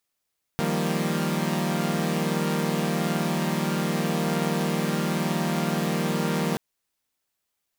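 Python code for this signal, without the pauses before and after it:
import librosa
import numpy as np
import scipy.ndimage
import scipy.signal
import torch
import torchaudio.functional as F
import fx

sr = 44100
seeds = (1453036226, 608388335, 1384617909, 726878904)

y = fx.chord(sr, length_s=5.98, notes=(51, 53, 55, 58), wave='saw', level_db=-26.5)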